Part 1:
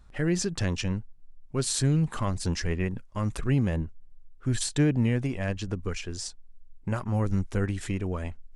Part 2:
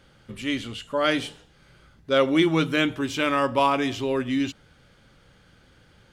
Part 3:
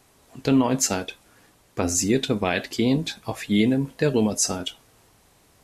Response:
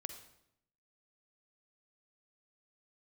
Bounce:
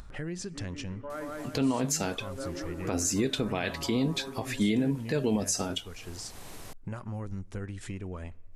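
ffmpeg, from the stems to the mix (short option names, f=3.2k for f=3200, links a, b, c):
-filter_complex "[0:a]volume=-15.5dB,asplit=3[a][b][c];[b]volume=-14dB[d];[1:a]lowpass=f=1.6k:w=0.5412,lowpass=f=1.6k:w=1.3066,adelay=100,volume=-13dB,asplit=2[e][f];[f]volume=-10.5dB[g];[2:a]adelay=1100,volume=-2dB[h];[c]apad=whole_len=274555[i];[e][i]sidechaincompress=threshold=-53dB:ratio=4:attack=16:release=822[j];[3:a]atrim=start_sample=2205[k];[d][k]afir=irnorm=-1:irlink=0[l];[g]aecho=0:1:171|342|513|684|855|1026|1197|1368:1|0.52|0.27|0.141|0.0731|0.038|0.0198|0.0103[m];[a][j][h][l][m]amix=inputs=5:normalize=0,acompressor=mode=upward:threshold=-29dB:ratio=2.5,alimiter=limit=-18dB:level=0:latency=1:release=115"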